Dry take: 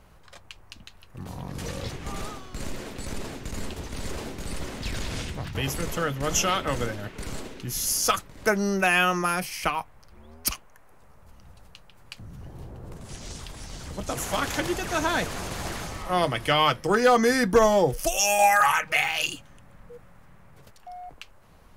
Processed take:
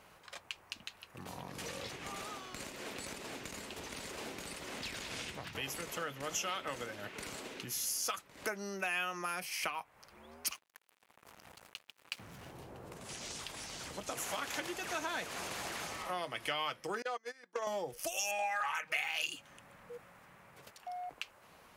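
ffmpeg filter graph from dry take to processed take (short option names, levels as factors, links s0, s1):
-filter_complex "[0:a]asettb=1/sr,asplit=3[s0][s1][s2];[s0]atrim=end=10.474[s3];[s1]atrim=start=10.47:end=12.52,asetpts=PTS-STARTPTS,afade=t=in:d=0.004:c=qsin,afade=t=out:st=2.046:d=0.004:c=qsin,highpass=f=40:p=1,acrusher=bits=7:mix=0:aa=0.5[s4];[s2]atrim=start=12.516[s5];[s3][s4]acrossfade=d=0.004:c1=hsin:c2=qsin[s6];[s6][s5]acrossfade=d=0.004:c1=qsin:c2=hsin,asettb=1/sr,asplit=3[s7][s8][s9];[s7]atrim=end=17.024[s10];[s8]atrim=start=17.02:end=17.67,asetpts=PTS-STARTPTS,afade=t=in:d=0.004:c=qsin,afade=t=out:st=0.646:d=0.004:c=qsin,agate=range=0.0251:threshold=0.126:ratio=16:release=100:detection=peak,highpass=400,lowpass=7800,acompressor=threshold=0.0891:ratio=2.5:attack=3.2:release=140:knee=1:detection=peak[s11];[s9]atrim=start=17.666[s12];[s10][s11]acrossfade=d=0.004:c1=hsin:c2=qsin[s13];[s13][s12]acrossfade=d=0.004:c1=qsin:c2=hsin,asettb=1/sr,asplit=3[s14][s15][s16];[s14]atrim=end=18.314[s17];[s15]atrim=start=18.31:end=18.75,asetpts=PTS-STARTPTS,afade=t=in:d=0.004:c=qsin,afade=t=out:st=0.436:d=0.004:c=qsin,aeval=exprs='val(0)+0.5*0.0158*sgn(val(0))':c=same,lowpass=9700,acrossover=split=4700[s18][s19];[s19]acompressor=threshold=0.00631:ratio=4:attack=1:release=60[s20];[s18][s20]amix=inputs=2:normalize=0[s21];[s16]atrim=start=18.746[s22];[s17][s21]acrossfade=d=0.004:c1=hsin:c2=qsin[s23];[s23][s22]acrossfade=d=0.004:c1=qsin:c2=hsin,acompressor=threshold=0.0158:ratio=4,highpass=f=450:p=1,equalizer=f=2500:w=2.1:g=3"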